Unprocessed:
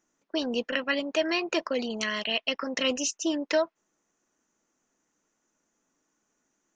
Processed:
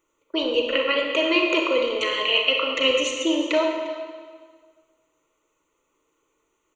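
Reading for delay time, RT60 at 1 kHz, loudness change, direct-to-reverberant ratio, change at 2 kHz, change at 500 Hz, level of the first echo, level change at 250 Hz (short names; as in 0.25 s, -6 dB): 0.352 s, 1.6 s, +7.0 dB, 1.0 dB, +7.5 dB, +7.5 dB, -17.5 dB, +4.5 dB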